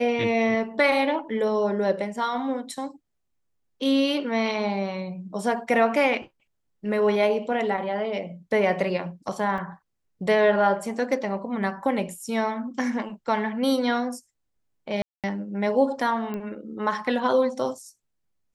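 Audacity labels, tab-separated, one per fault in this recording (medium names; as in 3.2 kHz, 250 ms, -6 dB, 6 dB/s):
9.580000	9.580000	dropout 2 ms
15.020000	15.240000	dropout 217 ms
16.340000	16.340000	pop -20 dBFS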